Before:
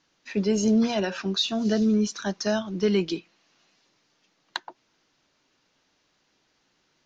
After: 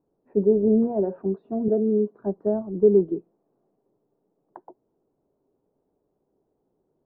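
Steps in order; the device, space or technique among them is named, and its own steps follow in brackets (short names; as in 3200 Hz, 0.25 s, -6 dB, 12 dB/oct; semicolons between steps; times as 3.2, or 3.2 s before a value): under water (LPF 740 Hz 24 dB/oct; bell 410 Hz +9 dB 0.31 oct); 1.68–2.15 HPF 220 Hz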